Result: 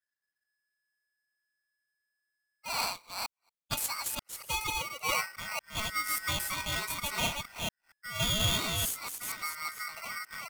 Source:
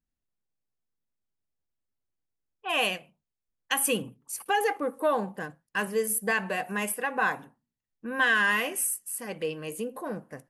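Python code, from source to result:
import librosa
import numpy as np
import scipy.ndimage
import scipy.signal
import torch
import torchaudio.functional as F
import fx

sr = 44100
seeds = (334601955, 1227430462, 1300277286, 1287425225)

y = fx.reverse_delay(x, sr, ms=233, wet_db=-2.0)
y = fx.highpass(y, sr, hz=630.0, slope=12, at=(2.8, 5.09))
y = y * np.sign(np.sin(2.0 * np.pi * 1700.0 * np.arange(len(y)) / sr))
y = y * librosa.db_to_amplitude(-6.5)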